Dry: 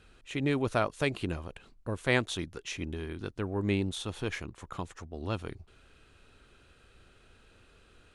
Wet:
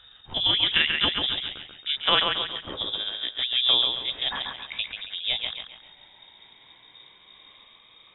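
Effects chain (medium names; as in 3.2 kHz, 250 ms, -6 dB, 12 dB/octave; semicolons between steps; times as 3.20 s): pitch bend over the whole clip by +7 st ending unshifted; thinning echo 137 ms, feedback 43%, high-pass 330 Hz, level -4 dB; frequency inversion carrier 3.7 kHz; trim +6.5 dB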